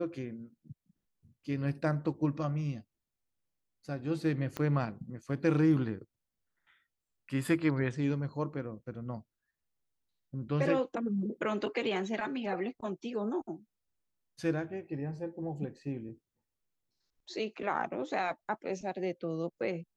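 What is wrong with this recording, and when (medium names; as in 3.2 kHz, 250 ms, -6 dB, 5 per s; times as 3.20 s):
4.57 s: pop -21 dBFS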